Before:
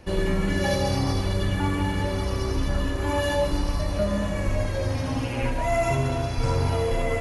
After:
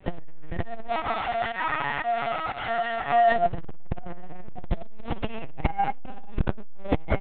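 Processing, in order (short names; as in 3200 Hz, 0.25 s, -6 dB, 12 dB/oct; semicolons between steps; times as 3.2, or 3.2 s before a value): 0.88–3.32 steep high-pass 540 Hz 72 dB/oct; comb 1.6 ms, depth 82%; frequency shift +120 Hz; pump 119 bpm, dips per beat 1, -18 dB, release 0.127 s; speakerphone echo 0.29 s, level -20 dB; LPC vocoder at 8 kHz pitch kept; maximiser +11 dB; core saturation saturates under 91 Hz; gain -6 dB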